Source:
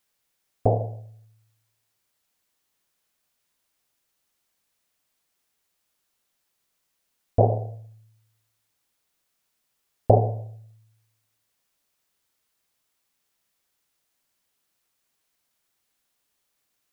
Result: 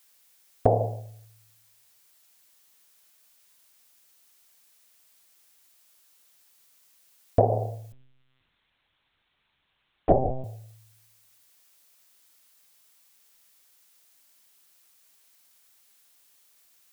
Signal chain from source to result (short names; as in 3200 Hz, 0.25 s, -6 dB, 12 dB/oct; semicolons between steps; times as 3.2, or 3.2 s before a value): tilt +2 dB/oct; compressor 6:1, threshold -23 dBFS, peak gain reduction 10 dB; 7.92–10.44 monotone LPC vocoder at 8 kHz 130 Hz; gain +7.5 dB